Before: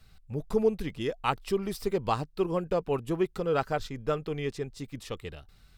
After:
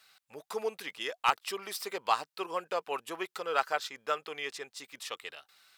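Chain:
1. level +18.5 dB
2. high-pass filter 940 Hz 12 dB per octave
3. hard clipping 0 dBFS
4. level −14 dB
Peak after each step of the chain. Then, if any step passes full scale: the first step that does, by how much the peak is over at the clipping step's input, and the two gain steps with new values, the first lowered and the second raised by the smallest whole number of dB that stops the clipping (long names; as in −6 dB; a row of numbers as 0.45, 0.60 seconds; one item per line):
+8.0, +5.0, 0.0, −14.0 dBFS
step 1, 5.0 dB
step 1 +13.5 dB, step 4 −9 dB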